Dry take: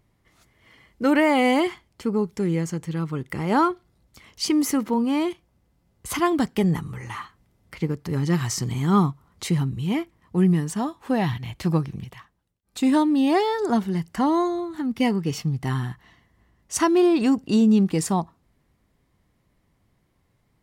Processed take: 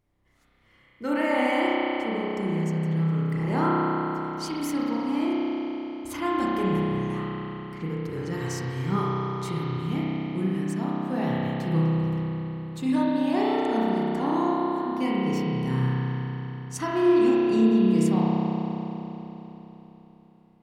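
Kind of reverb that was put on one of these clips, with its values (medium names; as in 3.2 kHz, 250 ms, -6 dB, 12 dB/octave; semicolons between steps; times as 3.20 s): spring tank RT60 3.8 s, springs 31 ms, chirp 35 ms, DRR -7.5 dB; trim -10.5 dB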